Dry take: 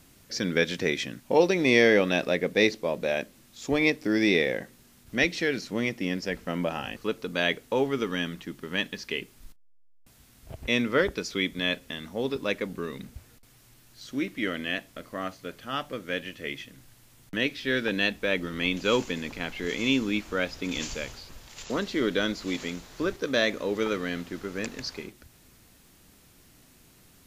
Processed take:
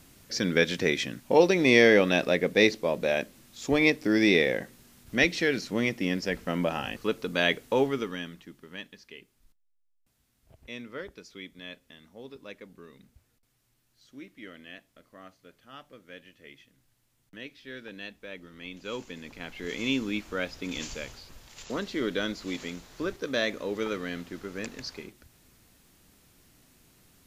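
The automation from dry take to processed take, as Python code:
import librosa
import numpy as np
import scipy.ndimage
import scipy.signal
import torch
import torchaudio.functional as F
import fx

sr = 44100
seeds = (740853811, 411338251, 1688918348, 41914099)

y = fx.gain(x, sr, db=fx.line((7.83, 1.0), (8.2, -7.0), (9.13, -15.5), (18.6, -15.5), (19.79, -3.5)))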